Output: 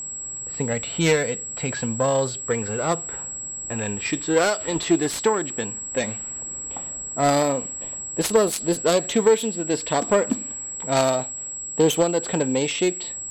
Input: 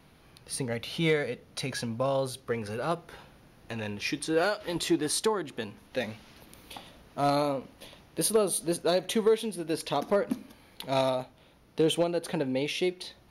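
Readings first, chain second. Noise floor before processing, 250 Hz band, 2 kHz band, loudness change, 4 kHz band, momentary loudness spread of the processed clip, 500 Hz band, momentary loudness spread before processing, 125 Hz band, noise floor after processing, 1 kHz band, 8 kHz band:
-58 dBFS, +7.0 dB, +6.5 dB, +6.5 dB, +4.0 dB, 10 LU, +6.5 dB, 15 LU, +6.5 dB, -33 dBFS, +7.0 dB, +13.0 dB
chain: self-modulated delay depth 0.11 ms; level-controlled noise filter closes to 1.2 kHz, open at -23 dBFS; whistle 7.7 kHz -37 dBFS; trim +7 dB

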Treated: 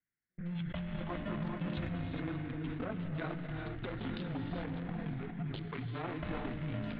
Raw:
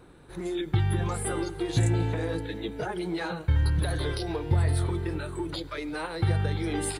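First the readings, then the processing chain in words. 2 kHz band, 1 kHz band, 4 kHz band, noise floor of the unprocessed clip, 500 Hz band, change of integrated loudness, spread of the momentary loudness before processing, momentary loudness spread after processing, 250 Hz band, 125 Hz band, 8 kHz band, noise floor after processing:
-8.5 dB, -9.0 dB, -12.5 dB, -45 dBFS, -11.5 dB, -10.5 dB, 8 LU, 3 LU, -6.0 dB, -12.5 dB, under -40 dB, under -85 dBFS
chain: local Wiener filter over 41 samples; dynamic bell 300 Hz, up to +4 dB, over -39 dBFS, Q 1; mistuned SSB -180 Hz 180–3500 Hz; gated-style reverb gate 440 ms rising, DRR 4.5 dB; band noise 1.4–2.2 kHz -62 dBFS; compression 2:1, threshold -35 dBFS, peak gain reduction 7 dB; bass shelf 400 Hz -8 dB; gate -44 dBFS, range -39 dB; decay stretcher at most 30 dB/s; trim +2 dB

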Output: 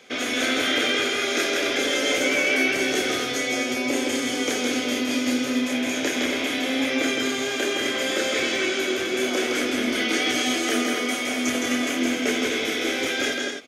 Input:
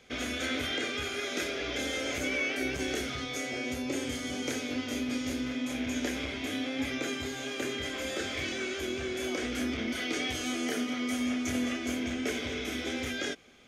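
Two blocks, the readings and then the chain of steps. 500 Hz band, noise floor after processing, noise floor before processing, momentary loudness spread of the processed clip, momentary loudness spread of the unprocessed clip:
+10.5 dB, -28 dBFS, -38 dBFS, 3 LU, 3 LU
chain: high-pass 240 Hz 12 dB/octave; on a send: loudspeakers at several distances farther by 56 m -3 dB, 88 m -7 dB; on the sum: trim +8.5 dB

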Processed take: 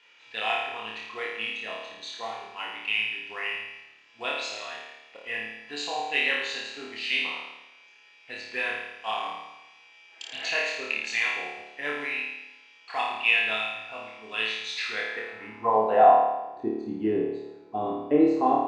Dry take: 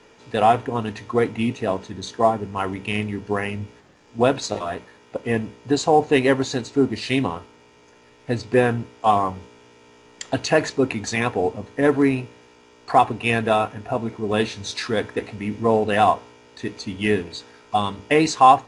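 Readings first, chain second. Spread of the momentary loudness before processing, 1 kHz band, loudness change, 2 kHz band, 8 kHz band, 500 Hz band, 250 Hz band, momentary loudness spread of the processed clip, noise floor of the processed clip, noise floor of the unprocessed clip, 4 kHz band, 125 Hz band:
13 LU, -6.5 dB, -5.5 dB, 0.0 dB, -11.0 dB, -8.5 dB, -9.0 dB, 16 LU, -55 dBFS, -52 dBFS, -0.5 dB, under -20 dB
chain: band-pass sweep 2.7 kHz -> 340 Hz, 14.72–16.58 s; flutter echo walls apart 4.7 m, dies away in 0.97 s; spectral replace 10.09–10.47 s, 260–2300 Hz both

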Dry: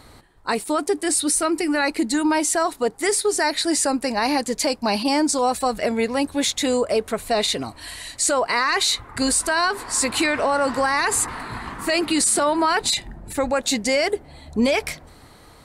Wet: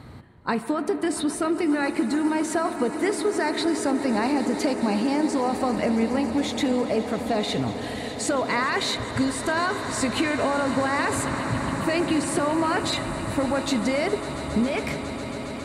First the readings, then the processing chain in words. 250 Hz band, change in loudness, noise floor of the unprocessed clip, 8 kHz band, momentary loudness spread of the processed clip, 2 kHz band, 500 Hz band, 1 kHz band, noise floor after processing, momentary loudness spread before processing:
+0.5 dB, -3.5 dB, -48 dBFS, -11.5 dB, 4 LU, -4.0 dB, -3.0 dB, -3.5 dB, -33 dBFS, 8 LU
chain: high-pass 120 Hz 12 dB/octave; tone controls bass +14 dB, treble -11 dB; compression, threshold -21 dBFS, peak gain reduction 12 dB; echo with a slow build-up 137 ms, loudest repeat 8, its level -18 dB; spring tank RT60 3.7 s, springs 31/48 ms, chirp 60 ms, DRR 10 dB

